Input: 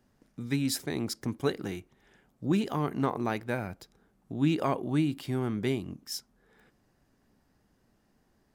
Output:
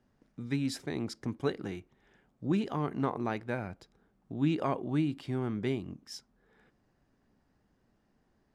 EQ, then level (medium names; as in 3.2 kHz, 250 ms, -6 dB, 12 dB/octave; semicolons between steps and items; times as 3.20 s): low-pass 9.8 kHz 12 dB/octave; treble shelf 5.3 kHz -9 dB; -2.5 dB